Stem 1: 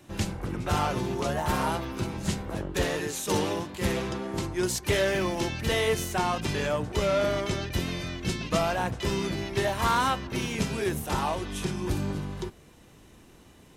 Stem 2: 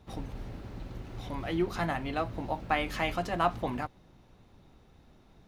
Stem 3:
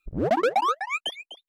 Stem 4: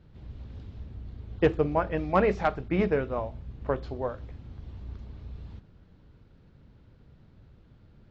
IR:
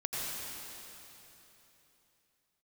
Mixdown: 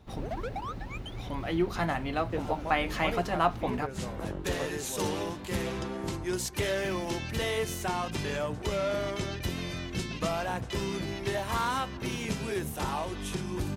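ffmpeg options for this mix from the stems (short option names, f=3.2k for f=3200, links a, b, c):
-filter_complex "[0:a]acompressor=threshold=-34dB:ratio=1.5,adelay=1700,volume=-0.5dB[a];[1:a]volume=1.5dB,asplit=2[b][c];[2:a]volume=-15dB[d];[3:a]adelay=900,volume=-12dB[e];[c]apad=whole_len=682035[f];[a][f]sidechaincompress=threshold=-49dB:ratio=4:attack=21:release=144[g];[g][b][d][e]amix=inputs=4:normalize=0"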